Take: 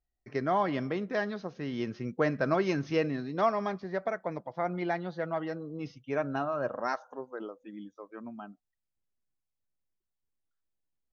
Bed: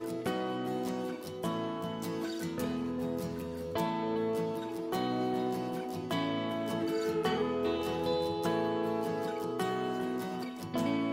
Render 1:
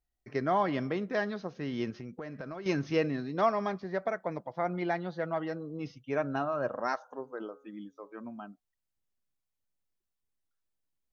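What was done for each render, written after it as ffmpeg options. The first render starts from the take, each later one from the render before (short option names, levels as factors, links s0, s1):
-filter_complex "[0:a]asettb=1/sr,asplit=3[s0][s1][s2];[s0]atrim=end=1.904[s3];[s1]atrim=start=1.9:end=2.66,asetpts=PTS-STARTPTS,afade=t=in:d=0.004:c=qsin,afade=t=out:st=0.756:d=0.004:c=qsin,acompressor=threshold=0.0126:ratio=6:attack=3.2:release=140:knee=1:detection=peak[s4];[s2]atrim=start=2.656[s5];[s3][s4]acrossfade=d=0.004:c1=hsin:c2=qsin[s6];[s6][s5]acrossfade=d=0.004:c1=qsin:c2=hsin,asplit=3[s7][s8][s9];[s7]afade=t=out:st=7.21:d=0.02[s10];[s8]bandreject=f=138.7:t=h:w=4,bandreject=f=277.4:t=h:w=4,bandreject=f=416.1:t=h:w=4,bandreject=f=554.8:t=h:w=4,bandreject=f=693.5:t=h:w=4,bandreject=f=832.2:t=h:w=4,bandreject=f=970.9:t=h:w=4,bandreject=f=1109.6:t=h:w=4,bandreject=f=1248.3:t=h:w=4,bandreject=f=1387:t=h:w=4,bandreject=f=1525.7:t=h:w=4,afade=t=in:st=7.21:d=0.02,afade=t=out:st=8.45:d=0.02[s11];[s9]afade=t=in:st=8.45:d=0.02[s12];[s10][s11][s12]amix=inputs=3:normalize=0"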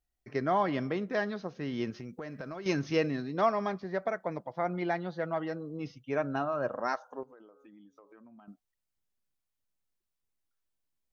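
-filter_complex "[0:a]asettb=1/sr,asplit=3[s0][s1][s2];[s0]atrim=end=1.914[s3];[s1]atrim=start=1.91:end=3.22,asetpts=PTS-STARTPTS,afade=t=in:d=0.004:c=qsin,afade=t=out:st=1.306:d=0.004:c=qsin,highshelf=f=5100:g=7[s4];[s2]atrim=start=3.216[s5];[s3][s4]acrossfade=d=0.004:c1=hsin:c2=qsin[s6];[s6][s5]acrossfade=d=0.004:c1=qsin:c2=hsin,asettb=1/sr,asplit=3[s7][s8][s9];[s7]atrim=end=7.234[s10];[s8]atrim=start=7.23:end=8.48,asetpts=PTS-STARTPTS,afade=t=in:d=0.004:c=qsin,afade=t=out:st=1.246:d=0.004:c=qsin,acompressor=threshold=0.00251:ratio=8:attack=3.2:release=140:knee=1:detection=peak[s11];[s9]atrim=start=8.476[s12];[s10][s11]acrossfade=d=0.004:c1=hsin:c2=qsin[s13];[s13][s12]acrossfade=d=0.004:c1=qsin:c2=hsin"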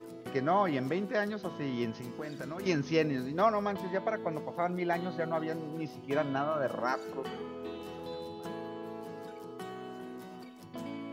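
-filter_complex "[1:a]volume=0.335[s0];[0:a][s0]amix=inputs=2:normalize=0"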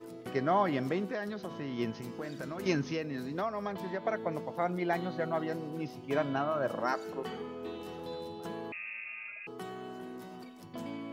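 -filter_complex "[0:a]asettb=1/sr,asplit=3[s0][s1][s2];[s0]atrim=end=1.144[s3];[s1]atrim=start=1.14:end=1.79,asetpts=PTS-STARTPTS,afade=t=in:d=0.004:c=qsin,afade=t=out:st=0.646:d=0.004:c=qsin,acompressor=threshold=0.02:ratio=3:attack=3.2:release=140:knee=1:detection=peak[s4];[s2]atrim=start=1.786[s5];[s3][s4]acrossfade=d=0.004:c1=hsin:c2=qsin[s6];[s6][s5]acrossfade=d=0.004:c1=qsin:c2=hsin,asettb=1/sr,asplit=3[s7][s8][s9];[s7]atrim=end=2.844[s10];[s8]atrim=start=2.84:end=4.05,asetpts=PTS-STARTPTS,afade=t=in:d=0.004:c=qsin,afade=t=out:st=1.206:d=0.004:c=qsin,acrossover=split=100|1100[s11][s12][s13];[s11]acompressor=threshold=0.00112:ratio=4[s14];[s12]acompressor=threshold=0.02:ratio=4[s15];[s13]acompressor=threshold=0.00794:ratio=4[s16];[s14][s15][s16]amix=inputs=3:normalize=0[s17];[s9]atrim=start=4.046[s18];[s10][s17]acrossfade=d=0.004:c1=hsin:c2=qsin[s19];[s19][s18]acrossfade=d=0.004:c1=qsin:c2=hsin,asettb=1/sr,asplit=3[s20][s21][s22];[s20]atrim=end=8.724[s23];[s21]atrim=start=8.72:end=9.47,asetpts=PTS-STARTPTS,afade=t=in:d=0.004:c=qsin,afade=t=out:st=0.746:d=0.004:c=qsin,lowpass=f=2500:t=q:w=0.5098,lowpass=f=2500:t=q:w=0.6013,lowpass=f=2500:t=q:w=0.9,lowpass=f=2500:t=q:w=2.563,afreqshift=-2900[s24];[s22]atrim=start=9.466[s25];[s23][s24]acrossfade=d=0.004:c1=hsin:c2=qsin[s26];[s26][s25]acrossfade=d=0.004:c1=qsin:c2=hsin"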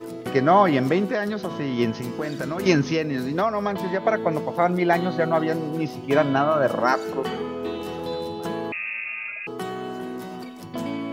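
-af "volume=3.76"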